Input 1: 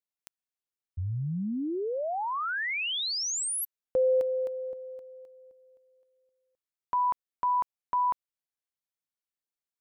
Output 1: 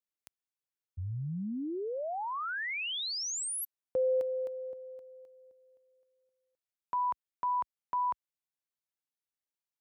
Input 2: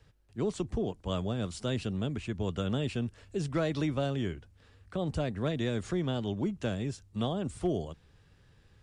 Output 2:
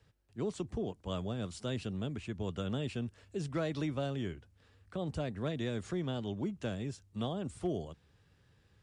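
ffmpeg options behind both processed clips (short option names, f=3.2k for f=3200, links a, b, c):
-af "highpass=57,volume=-4.5dB"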